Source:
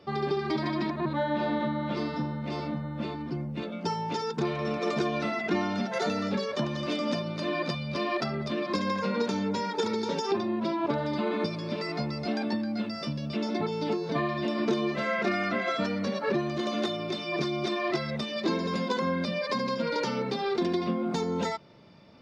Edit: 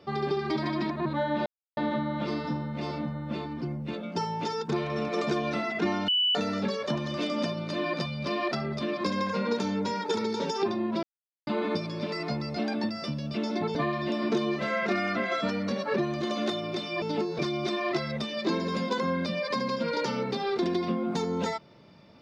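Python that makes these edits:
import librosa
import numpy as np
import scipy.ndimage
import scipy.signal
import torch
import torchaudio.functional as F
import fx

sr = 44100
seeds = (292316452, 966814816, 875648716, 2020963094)

y = fx.edit(x, sr, fx.insert_silence(at_s=1.46, length_s=0.31),
    fx.bleep(start_s=5.77, length_s=0.27, hz=2970.0, db=-21.5),
    fx.silence(start_s=10.72, length_s=0.44),
    fx.cut(start_s=12.58, length_s=0.3),
    fx.move(start_s=13.74, length_s=0.37, to_s=17.38), tone=tone)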